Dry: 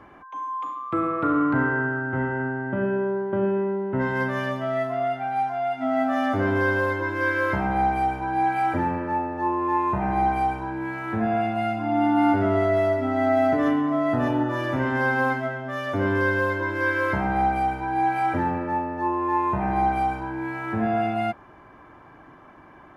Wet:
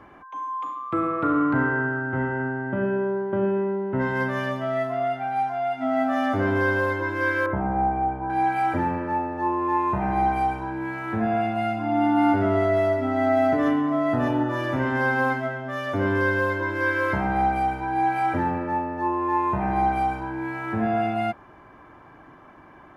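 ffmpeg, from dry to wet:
ffmpeg -i in.wav -filter_complex "[0:a]asettb=1/sr,asplit=3[link_01][link_02][link_03];[link_01]atrim=end=7.464[link_04];[link_02]atrim=start=7.46:end=8.3,asetpts=PTS-STARTPTS,afade=type=in:duration=0.004:curve=qsin,afade=type=out:start_time=0.836:duration=0.004:curve=qsin,lowpass=1100[link_05];[link_03]atrim=start=8.296[link_06];[link_04][link_05]acrossfade=duration=0.004:curve1=hsin:curve2=qsin[link_07];[link_07][link_06]acrossfade=duration=0.004:curve1=qsin:curve2=hsin" out.wav

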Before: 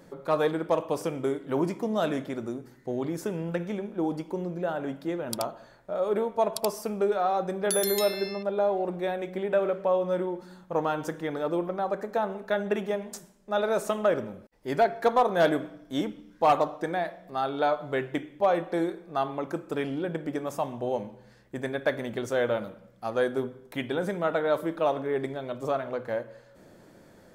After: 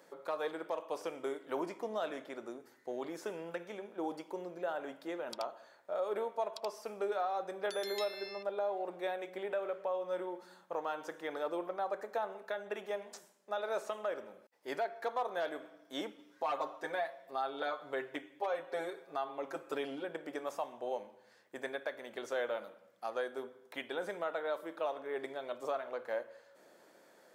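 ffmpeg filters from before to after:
ffmpeg -i in.wav -filter_complex "[0:a]asettb=1/sr,asplit=3[link_01][link_02][link_03];[link_01]atrim=end=1.634[link_04];[link_02]atrim=start=1.63:end=2.6,asetpts=PTS-STARTPTS,afade=type=in:duration=0.004:curve=qsin,afade=type=out:start_time=0.966:duration=0.004:curve=qsin,highshelf=frequency=5200:gain=-5[link_05];[link_03]atrim=start=2.596[link_06];[link_04][link_05]acrossfade=duration=0.004:curve1=hsin:curve2=qsin[link_07];[link_07][link_06]acrossfade=duration=0.004:curve1=qsin:curve2=hsin,asettb=1/sr,asplit=3[link_08][link_09][link_10];[link_08]atrim=end=16.184[link_11];[link_09]atrim=start=16.18:end=20.04,asetpts=PTS-STARTPTS,afade=type=in:duration=0.004:curve=qsin,afade=type=out:start_time=3.856:duration=0.004:curve=qsin,aecho=1:1:7.4:0.99,atrim=end_sample=170226[link_12];[link_10]atrim=start=20.036[link_13];[link_11][link_12]acrossfade=duration=0.004:curve1=hsin:curve2=qsin[link_14];[link_14][link_13]acrossfade=duration=0.004:curve1=qsin:curve2=hsin,acrossover=split=5800[link_15][link_16];[link_16]acompressor=threshold=-53dB:ratio=4:attack=1:release=60[link_17];[link_15][link_17]amix=inputs=2:normalize=0,highpass=480,alimiter=limit=-22dB:level=0:latency=1:release=447,volume=-4dB" out.wav

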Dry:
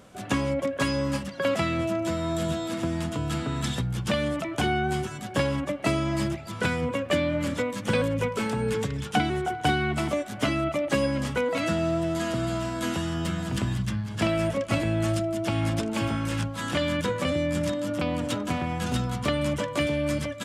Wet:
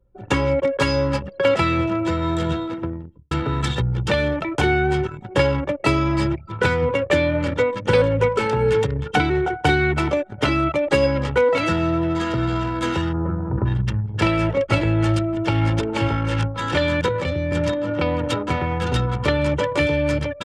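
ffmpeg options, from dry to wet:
ffmpeg -i in.wav -filter_complex "[0:a]asplit=3[link_01][link_02][link_03];[link_01]afade=type=out:start_time=13.12:duration=0.02[link_04];[link_02]lowpass=frequency=1300:width=0.5412,lowpass=frequency=1300:width=1.3066,afade=type=in:start_time=13.12:duration=0.02,afade=type=out:start_time=13.64:duration=0.02[link_05];[link_03]afade=type=in:start_time=13.64:duration=0.02[link_06];[link_04][link_05][link_06]amix=inputs=3:normalize=0,asettb=1/sr,asplit=3[link_07][link_08][link_09];[link_07]atrim=end=17.084[link_10];[link_08]atrim=start=17.08:end=17.52,asetpts=PTS-STARTPTS,afade=type=in:duration=0.004:curve=qsin,afade=type=out:start_time=0.436:duration=0.004:curve=qsin,acrossover=split=190|3000[link_11][link_12][link_13];[link_12]acompressor=threshold=-29dB:ratio=10:attack=3.2:release=140:knee=2.83:detection=peak[link_14];[link_11][link_14][link_13]amix=inputs=3:normalize=0[link_15];[link_09]atrim=start=17.516[link_16];[link_10][link_15]acrossfade=duration=0.004:curve1=hsin:curve2=qsin[link_17];[link_17][link_16]acrossfade=duration=0.004:curve1=qsin:curve2=hsin,asplit=2[link_18][link_19];[link_18]atrim=end=3.31,asetpts=PTS-STARTPTS,afade=type=out:start_time=2.55:duration=0.76[link_20];[link_19]atrim=start=3.31,asetpts=PTS-STARTPTS,afade=type=in:duration=0.004:curve=hsin[link_21];[link_20][link_21]concat=n=2:v=0:a=1,highshelf=frequency=8400:gain=-12,aecho=1:1:2.2:0.62,anlmdn=10,volume=6.5dB" out.wav

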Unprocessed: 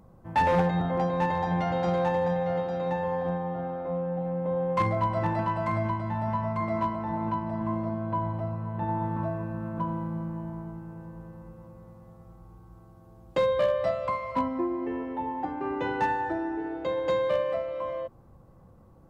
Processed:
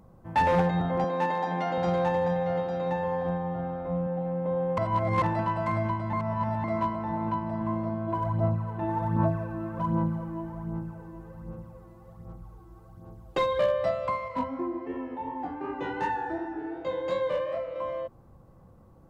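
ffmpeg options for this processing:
ffmpeg -i in.wav -filter_complex "[0:a]asettb=1/sr,asplit=3[link_01][link_02][link_03];[link_01]atrim=end=1.044[link_04];[link_02]atrim=start=1.04:end=1.78,asetpts=PTS-STARTPTS,afade=type=in:duration=0.004:curve=qsin,afade=type=out:start_time=0.736:duration=0.004:curve=qsin,highpass=frequency=200:width=0.5412,highpass=frequency=200:width=1.3066[link_05];[link_03]atrim=start=1.776[link_06];[link_04][link_05]acrossfade=duration=0.004:curve1=hsin:curve2=qsin[link_07];[link_07][link_06]acrossfade=duration=0.004:curve1=qsin:curve2=hsin,asettb=1/sr,asplit=3[link_08][link_09][link_10];[link_08]atrim=end=3.134[link_11];[link_09]atrim=start=3.13:end=4.07,asetpts=PTS-STARTPTS,afade=type=in:duration=0.004:curve=qsin,afade=type=out:start_time=0.936:duration=0.004:curve=qsin,asubboost=boost=8:cutoff=190[link_12];[link_10]atrim=start=4.066[link_13];[link_11][link_12]acrossfade=duration=0.004:curve1=hsin:curve2=qsin[link_14];[link_14][link_13]acrossfade=duration=0.004:curve1=qsin:curve2=hsin,asplit=3[link_15][link_16][link_17];[link_15]afade=type=out:start_time=8.07:duration=0.02[link_18];[link_16]aphaser=in_gain=1:out_gain=1:delay=3:decay=0.56:speed=1.3:type=sinusoidal,afade=type=in:start_time=8.07:duration=0.02,afade=type=out:start_time=13.59:duration=0.02[link_19];[link_17]afade=type=in:start_time=13.59:duration=0.02[link_20];[link_18][link_19][link_20]amix=inputs=3:normalize=0,asettb=1/sr,asplit=3[link_21][link_22][link_23];[link_21]atrim=end=14.284[link_24];[link_22]atrim=start=14.28:end=17.76,asetpts=PTS-STARTPTS,afade=type=in:duration=0.004:curve=qsin,afade=type=out:start_time=3.476:duration=0.004:curve=qsin,flanger=delay=19:depth=5.8:speed=2.7[link_25];[link_23]atrim=start=17.756[link_26];[link_24][link_25]acrossfade=duration=0.004:curve1=hsin:curve2=qsin[link_27];[link_27][link_26]acrossfade=duration=0.004:curve1=qsin:curve2=hsin,asplit=5[link_28][link_29][link_30][link_31][link_32];[link_28]atrim=end=4.782[link_33];[link_29]atrim=start=4.778:end=5.222,asetpts=PTS-STARTPTS,areverse[link_34];[link_30]atrim=start=5.218:end=6.132[link_35];[link_31]atrim=start=6.128:end=6.642,asetpts=PTS-STARTPTS,areverse[link_36];[link_32]atrim=start=6.638[link_37];[link_33][link_34]acrossfade=duration=0.004:curve1=hsin:curve2=hsin[link_38];[link_38][link_35]acrossfade=duration=0.004:curve1=hsin:curve2=hsin[link_39];[link_39][link_36]acrossfade=duration=0.004:curve1=hsin:curve2=hsin[link_40];[link_40][link_37]acrossfade=duration=0.004:curve1=hsin:curve2=hsin" out.wav

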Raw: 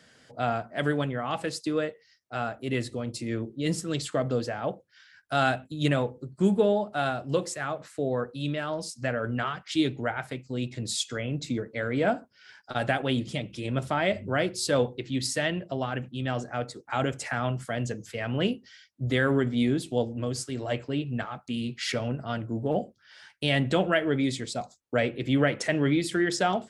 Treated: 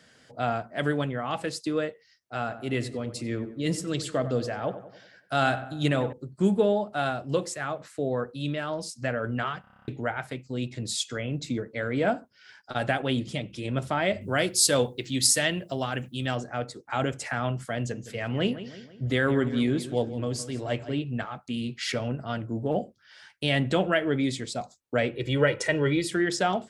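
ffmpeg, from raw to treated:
ffmpeg -i in.wav -filter_complex "[0:a]asettb=1/sr,asplit=3[link_01][link_02][link_03];[link_01]atrim=end=2.404[link_04];[link_02]atrim=start=2.4:end=6.13,asetpts=PTS-STARTPTS,afade=type=in:duration=0.004:curve=qsin,afade=type=out:start_time=3.726:duration=0.004:curve=qsin,asplit=2[link_05][link_06];[link_06]adelay=94,lowpass=frequency=2000:poles=1,volume=-12dB,asplit=2[link_07][link_08];[link_08]adelay=94,lowpass=frequency=2000:poles=1,volume=0.53,asplit=2[link_09][link_10];[link_10]adelay=94,lowpass=frequency=2000:poles=1,volume=0.53,asplit=2[link_11][link_12];[link_12]adelay=94,lowpass=frequency=2000:poles=1,volume=0.53,asplit=2[link_13][link_14];[link_14]adelay=94,lowpass=frequency=2000:poles=1,volume=0.53,asplit=2[link_15][link_16];[link_16]adelay=94,lowpass=frequency=2000:poles=1,volume=0.53[link_17];[link_05][link_07][link_09][link_11][link_13][link_15][link_17]amix=inputs=7:normalize=0,atrim=end_sample=164493[link_18];[link_03]atrim=start=6.126[link_19];[link_04][link_18]acrossfade=duration=0.004:curve1=hsin:curve2=qsin[link_20];[link_20][link_19]acrossfade=duration=0.004:curve1=qsin:curve2=hsin,asettb=1/sr,asplit=3[link_21][link_22][link_23];[link_21]atrim=end=14.214[link_24];[link_22]atrim=start=14.21:end=16.35,asetpts=PTS-STARTPTS,afade=type=in:duration=0.004:curve=qsin,afade=type=out:start_time=2.136:duration=0.004:curve=qsin,aemphasis=mode=production:type=75kf[link_25];[link_23]atrim=start=16.346[link_26];[link_24][link_25]acrossfade=duration=0.004:curve1=hsin:curve2=qsin[link_27];[link_27][link_26]acrossfade=duration=0.004:curve1=qsin:curve2=hsin,asettb=1/sr,asplit=3[link_28][link_29][link_30];[link_28]atrim=end=17.794[link_31];[link_29]atrim=start=17.79:end=20.99,asetpts=PTS-STARTPTS,afade=type=in:duration=0.004:curve=qsin,afade=type=out:start_time=3.196:duration=0.004:curve=qsin,asplit=2[link_32][link_33];[link_33]adelay=164,lowpass=frequency=3800:poles=1,volume=-13.5dB,asplit=2[link_34][link_35];[link_35]adelay=164,lowpass=frequency=3800:poles=1,volume=0.5,asplit=2[link_36][link_37];[link_37]adelay=164,lowpass=frequency=3800:poles=1,volume=0.5,asplit=2[link_38][link_39];[link_39]adelay=164,lowpass=frequency=3800:poles=1,volume=0.5,asplit=2[link_40][link_41];[link_41]adelay=164,lowpass=frequency=3800:poles=1,volume=0.5[link_42];[link_32][link_34][link_36][link_38][link_40][link_42]amix=inputs=6:normalize=0,atrim=end_sample=141120[link_43];[link_30]atrim=start=20.986[link_44];[link_31][link_43]acrossfade=duration=0.004:curve1=hsin:curve2=qsin[link_45];[link_45][link_44]acrossfade=duration=0.004:curve1=qsin:curve2=hsin,asettb=1/sr,asplit=3[link_46][link_47][link_48];[link_46]atrim=end=25.154[link_49];[link_47]atrim=start=25.15:end=26.11,asetpts=PTS-STARTPTS,afade=type=in:duration=0.004:curve=qsin,afade=type=out:start_time=0.956:duration=0.004:curve=qsin,aecho=1:1:2.1:0.69,atrim=end_sample=42336[link_50];[link_48]atrim=start=26.106[link_51];[link_49][link_50]acrossfade=duration=0.004:curve1=hsin:curve2=qsin[link_52];[link_52][link_51]acrossfade=duration=0.004:curve1=qsin:curve2=hsin,asplit=10[link_53][link_54][link_55][link_56][link_57][link_58][link_59][link_60][link_61][link_62];[link_53]atrim=end=9.642[link_63];[link_54]atrim=start=9.608:end=9.642[link_64];[link_55]atrim=start=9.608:end=9.642[link_65];[link_56]atrim=start=9.608:end=9.642[link_66];[link_57]atrim=start=9.608:end=9.642[link_67];[link_58]atrim=start=9.608:end=9.642[link_68];[link_59]atrim=start=9.608:end=9.642[link_69];[link_60]atrim=start=9.608:end=9.642[link_70];[link_61]atrim=start=9.608:end=9.642[link_71];[link_62]atrim=start=9.878[link_72];[link_63][link_64]acrossfade=duration=0.004:curve1=hsin:curve2=hsin[link_73];[link_73][link_65]acrossfade=duration=0.004:curve1=hsin:curve2=hsin[link_74];[link_74][link_66]acrossfade=duration=0.004:curve1=hsin:curve2=hsin[link_75];[link_75][link_67]acrossfade=duration=0.004:curve1=hsin:curve2=hsin[link_76];[link_76][link_68]acrossfade=duration=0.004:curve1=hsin:curve2=hsin[link_77];[link_77][link_69]acrossfade=duration=0.004:curve1=hsin:curve2=hsin[link_78];[link_78][link_70]acrossfade=duration=0.004:curve1=hsin:curve2=hsin[link_79];[link_79][link_71]acrossfade=duration=0.004:curve1=hsin:curve2=hsin[link_80];[link_80][link_72]acrossfade=duration=0.004:curve1=hsin:curve2=hsin" out.wav

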